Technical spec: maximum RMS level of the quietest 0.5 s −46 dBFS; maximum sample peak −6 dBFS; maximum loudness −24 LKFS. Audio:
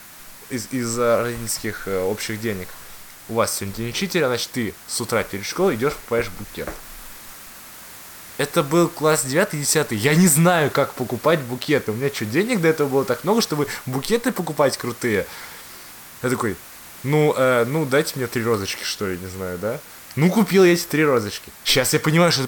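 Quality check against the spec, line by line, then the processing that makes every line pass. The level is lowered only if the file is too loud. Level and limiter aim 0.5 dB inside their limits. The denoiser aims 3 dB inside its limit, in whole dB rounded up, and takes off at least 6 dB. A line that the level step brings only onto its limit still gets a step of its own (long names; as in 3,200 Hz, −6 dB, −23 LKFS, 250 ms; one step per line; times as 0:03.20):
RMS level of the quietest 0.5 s −41 dBFS: out of spec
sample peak −5.5 dBFS: out of spec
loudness −20.5 LKFS: out of spec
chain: broadband denoise 6 dB, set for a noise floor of −41 dBFS
level −4 dB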